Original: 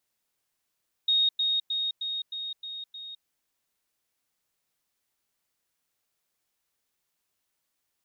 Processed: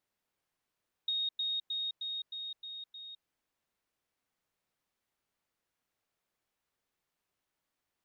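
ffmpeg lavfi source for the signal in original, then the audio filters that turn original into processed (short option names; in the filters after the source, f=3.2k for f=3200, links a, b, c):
-f lavfi -i "aevalsrc='pow(10,(-20-3*floor(t/0.31))/20)*sin(2*PI*3730*t)*clip(min(mod(t,0.31),0.21-mod(t,0.31))/0.005,0,1)':d=2.17:s=44100"
-af "highshelf=f=3.6k:g=-11.5,acompressor=threshold=-32dB:ratio=6"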